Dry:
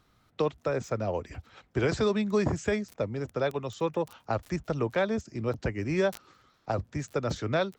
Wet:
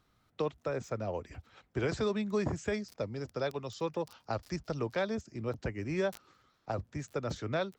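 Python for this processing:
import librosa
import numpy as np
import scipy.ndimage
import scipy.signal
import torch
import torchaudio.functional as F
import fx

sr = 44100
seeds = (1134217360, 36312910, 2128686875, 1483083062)

y = fx.peak_eq(x, sr, hz=4900.0, db=10.0, octaves=0.51, at=(2.74, 5.15))
y = F.gain(torch.from_numpy(y), -5.5).numpy()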